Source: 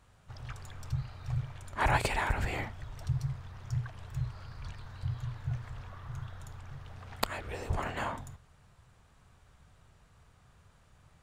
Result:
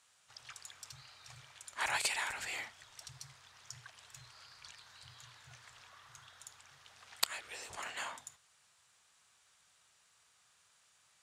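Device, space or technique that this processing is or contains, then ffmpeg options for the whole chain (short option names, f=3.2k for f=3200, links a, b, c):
piezo pickup straight into a mixer: -af "lowpass=8.2k,aderivative,volume=8.5dB"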